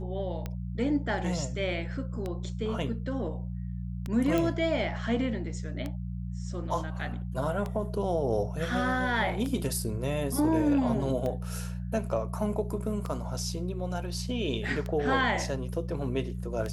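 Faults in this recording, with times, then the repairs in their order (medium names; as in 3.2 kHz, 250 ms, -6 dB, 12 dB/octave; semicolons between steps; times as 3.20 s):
hum 60 Hz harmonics 3 -35 dBFS
tick 33 1/3 rpm -21 dBFS
4.38 s: pop -15 dBFS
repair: de-click; de-hum 60 Hz, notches 3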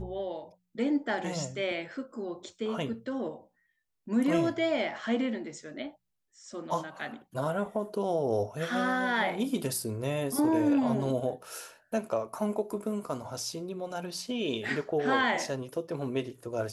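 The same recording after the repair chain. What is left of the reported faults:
4.38 s: pop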